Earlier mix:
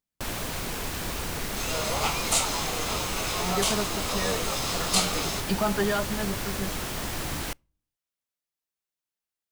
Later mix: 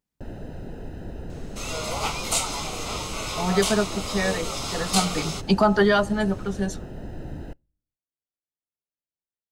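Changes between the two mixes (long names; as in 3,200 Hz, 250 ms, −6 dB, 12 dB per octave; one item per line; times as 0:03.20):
speech +8.0 dB
first sound: add moving average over 39 samples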